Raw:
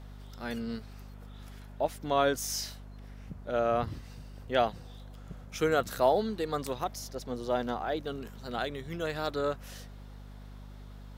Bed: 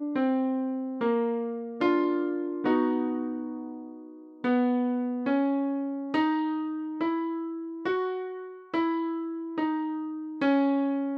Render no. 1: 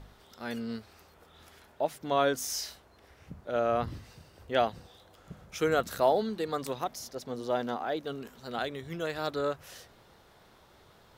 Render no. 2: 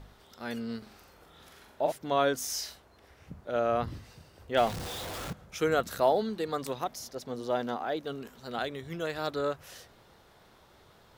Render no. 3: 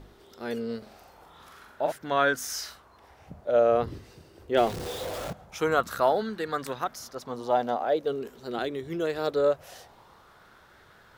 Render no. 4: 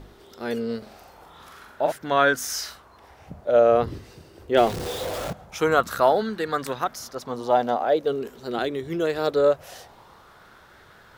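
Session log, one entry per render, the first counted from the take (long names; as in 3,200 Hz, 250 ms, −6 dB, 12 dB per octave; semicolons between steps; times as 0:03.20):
hum removal 50 Hz, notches 5
0:00.78–0:01.92: flutter between parallel walls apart 7.3 metres, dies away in 0.54 s; 0:04.57–0:05.33: converter with a step at zero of −33 dBFS
auto-filter bell 0.23 Hz 350–1,600 Hz +11 dB
level +4.5 dB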